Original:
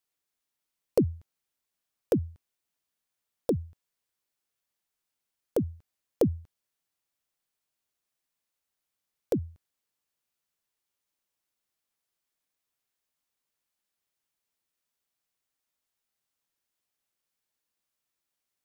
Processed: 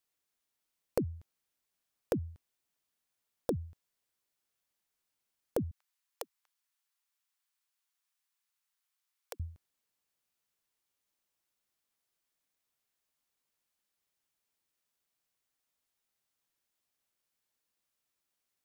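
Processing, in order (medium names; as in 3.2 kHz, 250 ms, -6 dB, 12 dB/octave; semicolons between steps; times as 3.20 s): 5.71–9.40 s: high-pass 890 Hz 24 dB/octave; compression, threshold -29 dBFS, peak gain reduction 10.5 dB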